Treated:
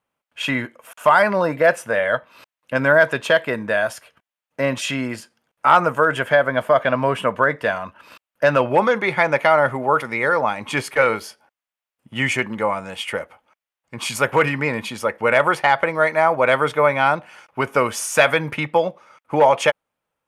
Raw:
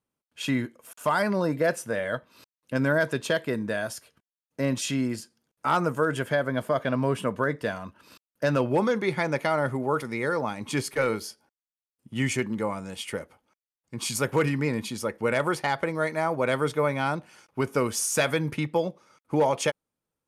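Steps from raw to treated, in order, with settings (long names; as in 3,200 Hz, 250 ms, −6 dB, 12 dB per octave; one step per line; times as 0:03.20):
flat-topped bell 1,300 Hz +10 dB 2.9 octaves
level +1 dB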